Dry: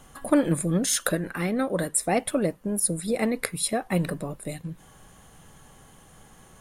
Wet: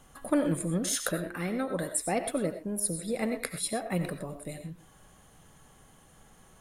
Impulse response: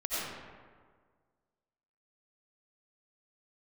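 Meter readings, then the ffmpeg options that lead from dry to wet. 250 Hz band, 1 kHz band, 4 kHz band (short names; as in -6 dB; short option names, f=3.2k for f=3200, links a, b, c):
-5.5 dB, -5.0 dB, -5.5 dB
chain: -filter_complex "[0:a]asplit=2[a][b];[1:a]atrim=start_sample=2205,afade=t=out:st=0.18:d=0.01,atrim=end_sample=8379[c];[b][c]afir=irnorm=-1:irlink=0,volume=-8.5dB[d];[a][d]amix=inputs=2:normalize=0,volume=-8dB"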